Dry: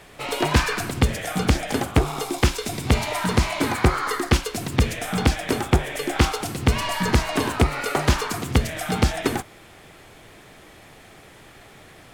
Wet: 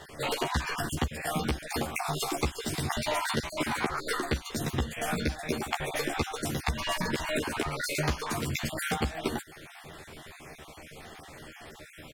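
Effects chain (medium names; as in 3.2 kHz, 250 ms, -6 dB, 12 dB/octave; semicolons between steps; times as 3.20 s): random holes in the spectrogram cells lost 34%; compression 10:1, threshold -28 dBFS, peak gain reduction 16.5 dB; doubling 13 ms -3 dB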